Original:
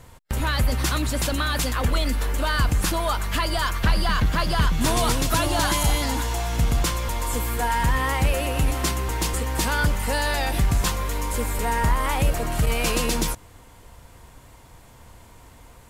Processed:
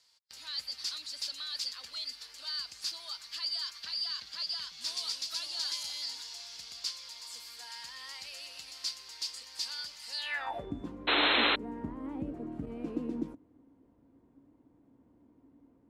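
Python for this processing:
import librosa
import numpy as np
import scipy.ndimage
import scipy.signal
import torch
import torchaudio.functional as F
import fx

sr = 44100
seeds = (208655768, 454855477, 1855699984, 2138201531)

y = fx.dmg_tone(x, sr, hz=3500.0, level_db=-28.0, at=(10.4, 10.87), fade=0.02)
y = fx.filter_sweep_bandpass(y, sr, from_hz=4700.0, to_hz=280.0, start_s=10.16, end_s=10.74, q=6.3)
y = fx.spec_paint(y, sr, seeds[0], shape='noise', start_s=11.07, length_s=0.49, low_hz=260.0, high_hz=4200.0, level_db=-28.0)
y = y * 10.0 ** (1.5 / 20.0)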